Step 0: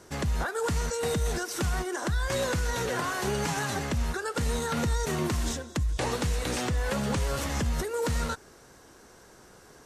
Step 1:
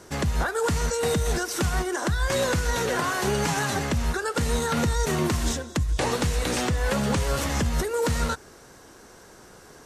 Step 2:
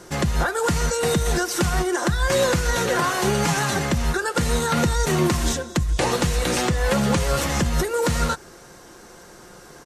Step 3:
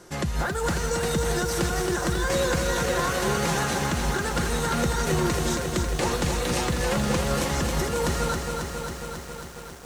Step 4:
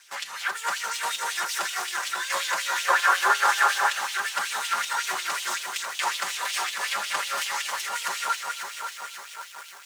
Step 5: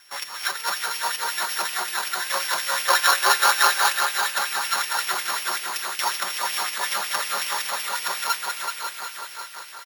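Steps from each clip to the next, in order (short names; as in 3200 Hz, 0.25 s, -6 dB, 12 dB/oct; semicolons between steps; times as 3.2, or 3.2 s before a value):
notches 60/120 Hz; gain +4.5 dB
comb 5.7 ms, depth 35%; gain +3.5 dB
lo-fi delay 0.272 s, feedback 80%, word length 7-bit, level -5 dB; gain -5.5 dB
minimum comb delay 5.1 ms; LFO high-pass sine 5.4 Hz 930–3100 Hz; spectral gain 2.89–3.99, 350–1800 Hz +8 dB
sample sorter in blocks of 8 samples; feedback echo 0.378 s, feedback 48%, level -6 dB; gain +2 dB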